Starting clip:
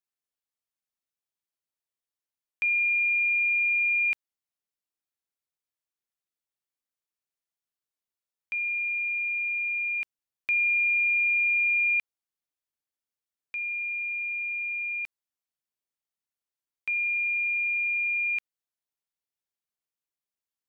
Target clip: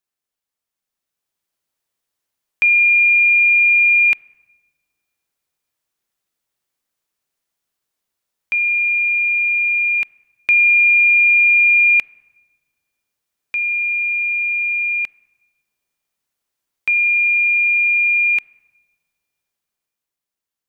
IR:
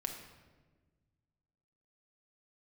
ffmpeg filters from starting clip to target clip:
-filter_complex "[0:a]dynaudnorm=framelen=140:gausssize=17:maxgain=6.5dB,asplit=2[link_01][link_02];[1:a]atrim=start_sample=2205,lowpass=2500[link_03];[link_02][link_03]afir=irnorm=-1:irlink=0,volume=-16dB[link_04];[link_01][link_04]amix=inputs=2:normalize=0,volume=6dB"

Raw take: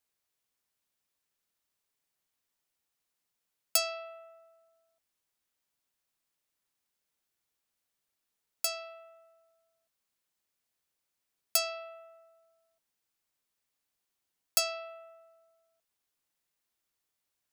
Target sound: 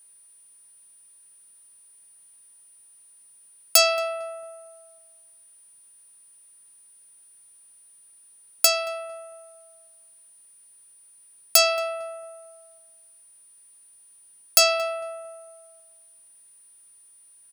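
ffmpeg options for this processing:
ffmpeg -i in.wav -filter_complex "[0:a]aeval=exprs='val(0)+0.000501*sin(2*PI*9400*n/s)':channel_layout=same,asplit=2[link_01][link_02];[link_02]adelay=226,lowpass=frequency=1100:poles=1,volume=-16dB,asplit=2[link_03][link_04];[link_04]adelay=226,lowpass=frequency=1100:poles=1,volume=0.48,asplit=2[link_05][link_06];[link_06]adelay=226,lowpass=frequency=1100:poles=1,volume=0.48,asplit=2[link_07][link_08];[link_08]adelay=226,lowpass=frequency=1100:poles=1,volume=0.48[link_09];[link_03][link_05][link_07][link_09]amix=inputs=4:normalize=0[link_10];[link_01][link_10]amix=inputs=2:normalize=0,alimiter=level_in=16dB:limit=-1dB:release=50:level=0:latency=1,volume=-1dB" out.wav

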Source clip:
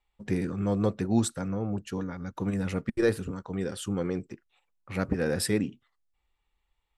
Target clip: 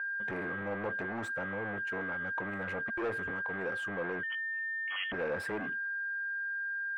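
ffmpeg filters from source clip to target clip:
ffmpeg -i in.wav -filter_complex "[0:a]aeval=exprs='val(0)+0.0158*sin(2*PI*1600*n/s)':channel_layout=same,asplit=2[link_01][link_02];[link_02]alimiter=limit=-22.5dB:level=0:latency=1:release=36,volume=1dB[link_03];[link_01][link_03]amix=inputs=2:normalize=0,asoftclip=type=tanh:threshold=-24.5dB,acrossover=split=420 2300:gain=0.2 1 0.0794[link_04][link_05][link_06];[link_04][link_05][link_06]amix=inputs=3:normalize=0,asettb=1/sr,asplit=3[link_07][link_08][link_09];[link_07]atrim=end=4.234[link_10];[link_08]atrim=start=4.23:end=5.12,asetpts=PTS-STARTPTS,afade=type=in:duration=0.004:curve=qsin,afade=type=out:start_time=0.886:duration=0.004:curve=qsin,lowpass=frequency=2900:width_type=q:width=0.5098,lowpass=frequency=2900:width_type=q:width=0.6013,lowpass=frequency=2900:width_type=q:width=0.9,lowpass=frequency=2900:width_type=q:width=2.563,afreqshift=-3400[link_11];[link_09]atrim=start=5.116[link_12];[link_10][link_11]acrossfade=duration=0.004:curve1=hsin:curve2=qsin[link_13];[link_13][link_12]acrossfade=duration=0.004:curve1=qsin:curve2=hsin,volume=-1.5dB" out.wav

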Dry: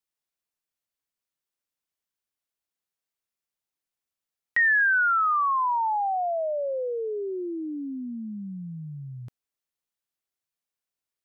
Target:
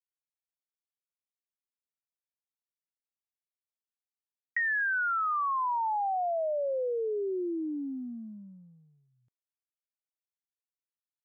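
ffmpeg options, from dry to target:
ffmpeg -i in.wav -af "acompressor=threshold=-28dB:ratio=6,agate=range=-33dB:threshold=-34dB:ratio=16:detection=peak" out.wav

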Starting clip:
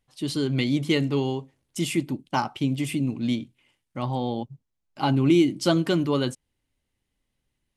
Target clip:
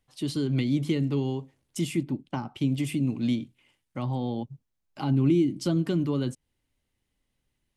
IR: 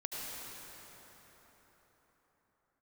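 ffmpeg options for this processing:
-filter_complex "[0:a]asettb=1/sr,asplit=3[link_01][link_02][link_03];[link_01]atrim=end=2.034[link_04];[link_02]atrim=start=2.03:end=2.55,asetpts=PTS-STARTPTS,afade=type=in:duration=0.004:curve=qsin,afade=type=out:start_time=0.516:duration=0.004:curve=qsin,lowpass=frequency=3000:poles=1[link_05];[link_03]atrim=start=2.546[link_06];[link_04][link_05]acrossfade=duration=0.004:curve1=hsin:curve2=qsin[link_07];[link_07][link_06]acrossfade=duration=0.004:curve1=qsin:curve2=hsin,acrossover=split=330[link_08][link_09];[link_09]acompressor=threshold=-35dB:ratio=6[link_10];[link_08][link_10]amix=inputs=2:normalize=0"

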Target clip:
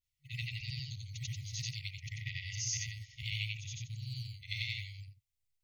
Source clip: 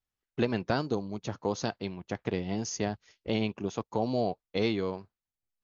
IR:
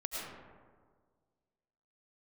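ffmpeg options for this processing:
-filter_complex "[0:a]afftfilt=real='re':imag='-im':win_size=8192:overlap=0.75,adynamicequalizer=threshold=0.00282:dfrequency=100:dqfactor=0.79:tfrequency=100:tqfactor=0.79:attack=5:release=100:ratio=0.375:range=2.5:mode=boostabove:tftype=bell,acrossover=split=130|400[link_01][link_02][link_03];[link_01]acompressor=threshold=-53dB:ratio=4[link_04];[link_02]acompressor=threshold=-45dB:ratio=4[link_05];[link_03]acompressor=threshold=-38dB:ratio=4[link_06];[link_04][link_05][link_06]amix=inputs=3:normalize=0,afftfilt=real='re*(1-between(b*sr/4096,140,1900))':imag='im*(1-between(b*sr/4096,140,1900))':win_size=4096:overlap=0.75,acrossover=split=330|2100[link_07][link_08][link_09];[link_07]acrusher=samples=12:mix=1:aa=0.000001:lfo=1:lforange=19.2:lforate=0.69[link_10];[link_10][link_08][link_09]amix=inputs=3:normalize=0,volume=7.5dB"

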